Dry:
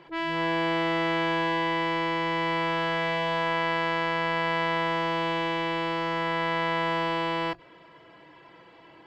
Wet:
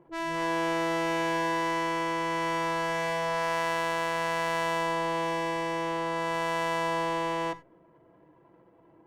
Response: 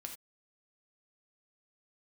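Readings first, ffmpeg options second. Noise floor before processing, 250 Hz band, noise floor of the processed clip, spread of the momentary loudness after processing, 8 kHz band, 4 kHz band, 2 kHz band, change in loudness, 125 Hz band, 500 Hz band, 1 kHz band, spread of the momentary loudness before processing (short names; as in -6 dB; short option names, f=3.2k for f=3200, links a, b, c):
-53 dBFS, -3.0 dB, -60 dBFS, 3 LU, n/a, -5.5 dB, -3.5 dB, -2.5 dB, -5.0 dB, -1.0 dB, -1.5 dB, 2 LU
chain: -filter_complex "[0:a]adynamicsmooth=sensitivity=3:basefreq=630,asplit=2[a][b];[1:a]atrim=start_sample=2205[c];[b][c]afir=irnorm=-1:irlink=0,volume=-4.5dB[d];[a][d]amix=inputs=2:normalize=0,volume=-5dB" -ar 48000 -c:a libopus -b:a 48k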